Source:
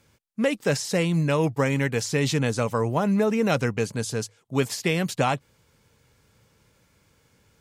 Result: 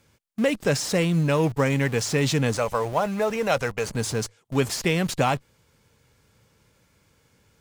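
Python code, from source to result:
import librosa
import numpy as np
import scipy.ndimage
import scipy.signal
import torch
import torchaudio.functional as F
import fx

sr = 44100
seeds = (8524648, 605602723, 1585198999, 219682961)

p1 = fx.low_shelf_res(x, sr, hz=430.0, db=-8.5, q=1.5, at=(2.56, 3.89))
p2 = fx.schmitt(p1, sr, flips_db=-36.0)
y = p1 + F.gain(torch.from_numpy(p2), -12.0).numpy()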